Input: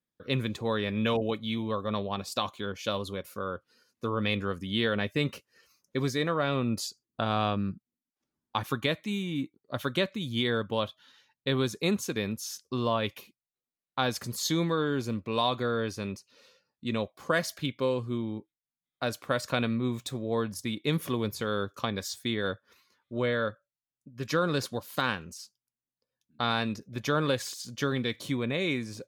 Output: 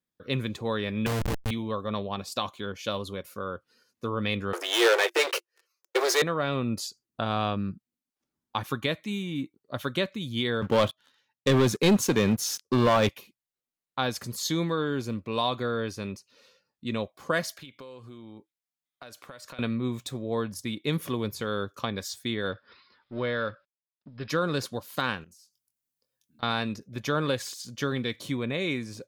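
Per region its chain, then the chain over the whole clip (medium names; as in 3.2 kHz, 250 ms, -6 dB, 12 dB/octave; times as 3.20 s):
1.06–1.51 s: peaking EQ 120 Hz +8.5 dB 0.4 oct + Schmitt trigger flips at -28 dBFS + level flattener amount 50%
4.53–6.22 s: waveshaping leveller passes 5 + rippled Chebyshev high-pass 340 Hz, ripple 3 dB
10.62–13.09 s: high-pass 81 Hz 24 dB/octave + treble shelf 2.4 kHz -4 dB + waveshaping leveller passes 3
17.51–19.59 s: bass shelf 380 Hz -8.5 dB + compression 16:1, threshold -40 dBFS
22.52–24.30 s: companding laws mixed up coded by mu + rippled Chebyshev low-pass 5.2 kHz, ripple 3 dB
25.24–26.43 s: treble shelf 5.8 kHz +11 dB + compression, threshold -56 dBFS + doubling 23 ms -8.5 dB
whole clip: none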